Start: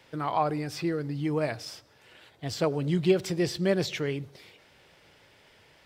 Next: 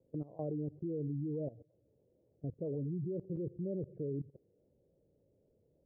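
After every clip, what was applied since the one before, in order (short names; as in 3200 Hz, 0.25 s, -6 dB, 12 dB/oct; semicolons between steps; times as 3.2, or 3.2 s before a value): spectral gate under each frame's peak -20 dB strong; Chebyshev low-pass 540 Hz, order 4; level quantiser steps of 18 dB; gain -1 dB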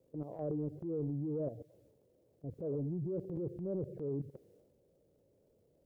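low shelf 410 Hz -7.5 dB; transient shaper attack -6 dB, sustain +7 dB; gain +6 dB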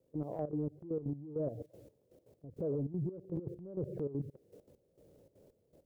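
compressor 2:1, threshold -47 dBFS, peak gain reduction 8 dB; step gate "..xxxx.xx...x.x." 199 bpm -12 dB; gain +9 dB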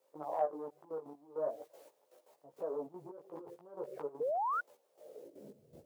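chorus voices 4, 0.43 Hz, delay 16 ms, depth 4.6 ms; high-pass sweep 930 Hz -> 100 Hz, 4.92–5.74; painted sound rise, 4.2–4.61, 440–1500 Hz -44 dBFS; gain +10.5 dB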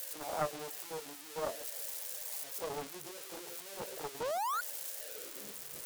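switching spikes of -29.5 dBFS; Doppler distortion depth 0.73 ms; gain -1 dB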